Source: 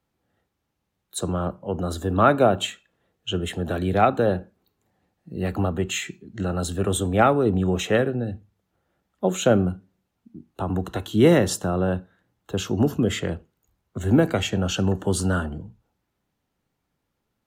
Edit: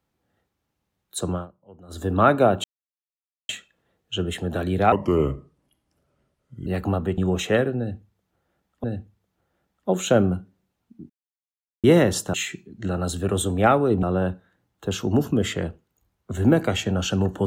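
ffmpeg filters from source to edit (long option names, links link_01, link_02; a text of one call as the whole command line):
ffmpeg -i in.wav -filter_complex "[0:a]asplit=12[link_01][link_02][link_03][link_04][link_05][link_06][link_07][link_08][link_09][link_10][link_11][link_12];[link_01]atrim=end=1.47,asetpts=PTS-STARTPTS,afade=type=out:start_time=1.33:duration=0.14:silence=0.0944061[link_13];[link_02]atrim=start=1.47:end=1.88,asetpts=PTS-STARTPTS,volume=-20.5dB[link_14];[link_03]atrim=start=1.88:end=2.64,asetpts=PTS-STARTPTS,afade=type=in:duration=0.14:silence=0.0944061,afade=type=out:start_time=0.756:duration=0.004:curve=hsin,apad=pad_dur=0.85[link_15];[link_04]atrim=start=2.64:end=4.074,asetpts=PTS-STARTPTS,afade=type=in:duration=0.004:curve=hsin[link_16];[link_05]atrim=start=4.07:end=5.38,asetpts=PTS-STARTPTS,asetrate=33075,aresample=44100[link_17];[link_06]atrim=start=5.376:end=5.892[link_18];[link_07]atrim=start=7.578:end=9.242[link_19];[link_08]atrim=start=8.188:end=10.45,asetpts=PTS-STARTPTS,afade=type=out:start_time=2.258:duration=0.004:curve=hsin[link_20];[link_09]atrim=start=10.45:end=11.19,asetpts=PTS-STARTPTS,volume=0[link_21];[link_10]atrim=start=11.19:end=11.692,asetpts=PTS-STARTPTS,afade=type=in:duration=0.004:curve=hsin[link_22];[link_11]atrim=start=5.888:end=7.582[link_23];[link_12]atrim=start=11.688[link_24];[link_13][link_14][link_15][link_16]concat=n=4:v=0:a=1[link_25];[link_25][link_17]acrossfade=duration=0.004:curve1=hsin:curve2=hsin[link_26];[link_26][link_18]acrossfade=duration=0.004:curve1=hsin:curve2=hsin[link_27];[link_27][link_19]acrossfade=duration=0.004:curve1=hsin:curve2=hsin[link_28];[link_20][link_21][link_22]concat=n=3:v=0:a=1[link_29];[link_28][link_29]acrossfade=duration=0.004:curve1=hsin:curve2=hsin[link_30];[link_30][link_23]acrossfade=duration=0.004:curve1=hsin:curve2=hsin[link_31];[link_31][link_24]acrossfade=duration=0.004:curve1=hsin:curve2=hsin" out.wav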